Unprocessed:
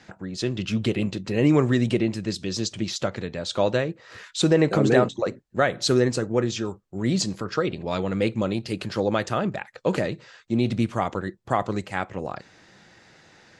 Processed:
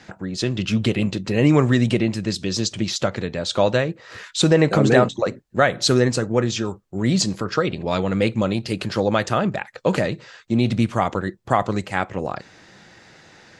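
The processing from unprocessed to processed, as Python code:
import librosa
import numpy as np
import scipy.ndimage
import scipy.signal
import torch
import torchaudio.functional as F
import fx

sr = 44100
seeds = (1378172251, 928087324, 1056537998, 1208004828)

y = fx.dynamic_eq(x, sr, hz=360.0, q=1.8, threshold_db=-30.0, ratio=4.0, max_db=-4)
y = y * librosa.db_to_amplitude(5.0)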